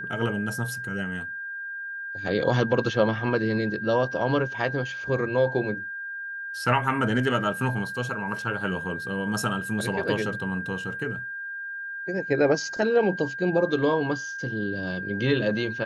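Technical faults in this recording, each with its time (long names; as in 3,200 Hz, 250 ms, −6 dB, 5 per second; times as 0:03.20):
whistle 1,600 Hz −32 dBFS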